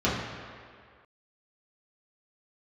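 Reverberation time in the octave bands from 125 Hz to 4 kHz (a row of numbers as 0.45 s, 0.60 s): 1.6 s, 1.7 s, 2.0 s, 2.1 s, 2.0 s, 1.6 s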